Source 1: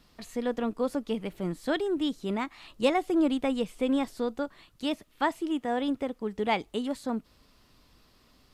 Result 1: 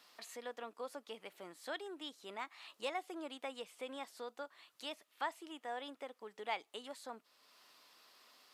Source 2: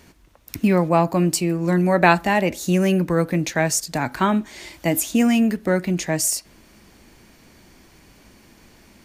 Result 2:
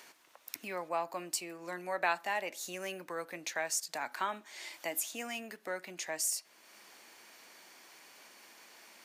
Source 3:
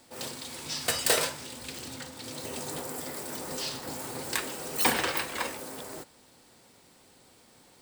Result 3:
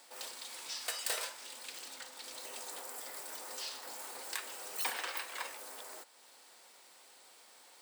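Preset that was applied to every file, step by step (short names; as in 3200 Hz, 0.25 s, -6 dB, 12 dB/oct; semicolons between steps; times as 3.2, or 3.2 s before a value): compressor 1.5:1, threshold -54 dBFS; HPF 670 Hz 12 dB/oct; gain +1 dB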